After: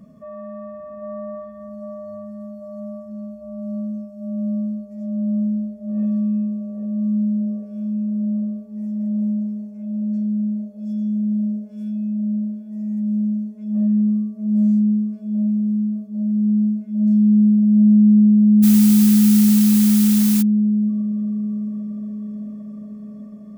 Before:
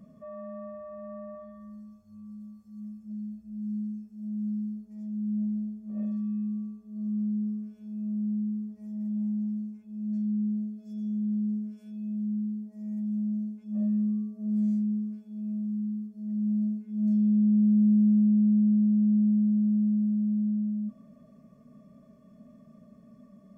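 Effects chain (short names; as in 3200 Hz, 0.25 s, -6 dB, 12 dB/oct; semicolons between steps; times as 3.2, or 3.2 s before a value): narrowing echo 0.798 s, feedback 85%, band-pass 510 Hz, level -3 dB; 18.62–20.41 added noise blue -32 dBFS; gain +6.5 dB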